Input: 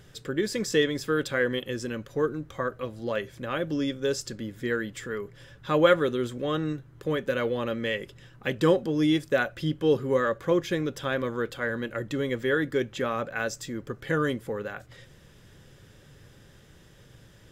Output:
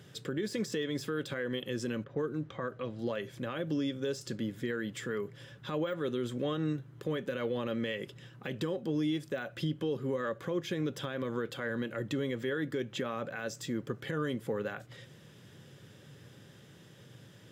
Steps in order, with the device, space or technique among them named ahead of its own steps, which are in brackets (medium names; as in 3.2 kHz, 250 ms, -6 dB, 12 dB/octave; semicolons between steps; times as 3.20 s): 2.04–2.99 s: level-controlled noise filter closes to 1.4 kHz, open at -24 dBFS; broadcast voice chain (high-pass 110 Hz 24 dB/octave; de-esser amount 80%; compression 4:1, threshold -28 dBFS, peak gain reduction 12 dB; peaking EQ 3.2 kHz +3 dB 0.67 oct; peak limiter -24 dBFS, peak gain reduction 8.5 dB); bass shelf 390 Hz +4.5 dB; trim -2.5 dB